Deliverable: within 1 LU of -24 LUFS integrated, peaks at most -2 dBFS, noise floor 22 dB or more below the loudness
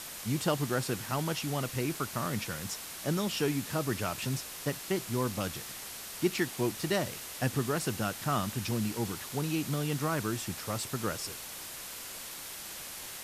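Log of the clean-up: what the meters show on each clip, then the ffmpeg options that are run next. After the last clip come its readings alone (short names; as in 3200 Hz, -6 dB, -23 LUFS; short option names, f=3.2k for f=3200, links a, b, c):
noise floor -43 dBFS; noise floor target -56 dBFS; loudness -33.5 LUFS; peak -15.5 dBFS; loudness target -24.0 LUFS
-> -af "afftdn=nr=13:nf=-43"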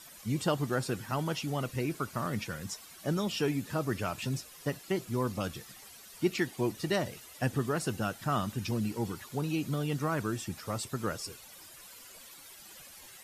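noise floor -52 dBFS; noise floor target -56 dBFS
-> -af "afftdn=nr=6:nf=-52"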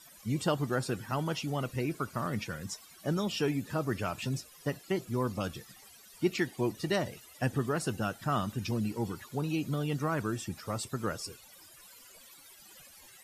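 noise floor -55 dBFS; noise floor target -56 dBFS
-> -af "afftdn=nr=6:nf=-55"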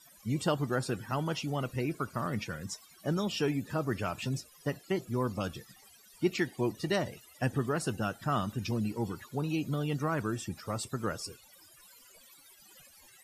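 noise floor -59 dBFS; loudness -34.0 LUFS; peak -16.0 dBFS; loudness target -24.0 LUFS
-> -af "volume=10dB"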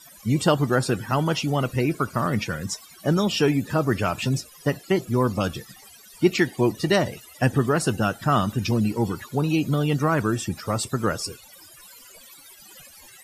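loudness -24.0 LUFS; peak -6.0 dBFS; noise floor -49 dBFS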